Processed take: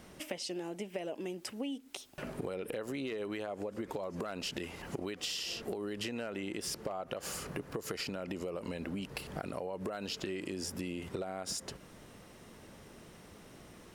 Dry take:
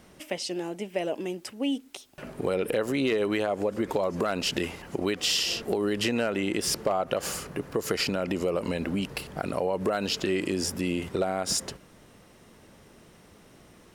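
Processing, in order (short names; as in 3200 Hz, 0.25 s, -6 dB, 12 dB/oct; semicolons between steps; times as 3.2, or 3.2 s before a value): compressor 6:1, threshold -36 dBFS, peak gain reduction 14 dB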